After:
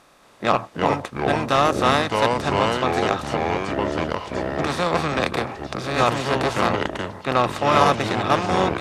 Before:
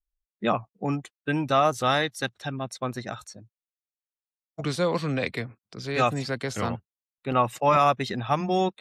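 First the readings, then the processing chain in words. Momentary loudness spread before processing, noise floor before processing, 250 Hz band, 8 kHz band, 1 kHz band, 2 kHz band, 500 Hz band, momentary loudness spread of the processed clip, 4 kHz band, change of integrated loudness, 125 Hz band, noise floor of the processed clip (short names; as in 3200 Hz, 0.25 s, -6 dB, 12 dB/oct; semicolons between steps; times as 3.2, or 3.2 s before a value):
16 LU, under -85 dBFS, +5.0 dB, +5.0 dB, +6.0 dB, +7.0 dB, +6.0 dB, 8 LU, +7.0 dB, +5.0 dB, +4.0 dB, -50 dBFS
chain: per-bin compression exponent 0.4; added harmonics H 7 -23 dB, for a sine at -2.5 dBFS; echoes that change speed 0.225 s, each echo -4 st, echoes 3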